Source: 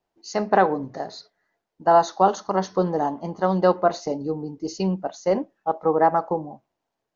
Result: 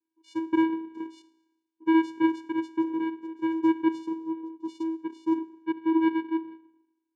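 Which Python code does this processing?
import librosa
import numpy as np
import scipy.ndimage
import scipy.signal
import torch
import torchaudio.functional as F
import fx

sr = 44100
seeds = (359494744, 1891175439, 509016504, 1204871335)

y = fx.sine_speech(x, sr, at=(5.9, 6.44))
y = fx.rev_schroeder(y, sr, rt60_s=0.96, comb_ms=27, drr_db=15.5)
y = fx.vocoder(y, sr, bands=4, carrier='square', carrier_hz=324.0)
y = y * librosa.db_to_amplitude(-4.5)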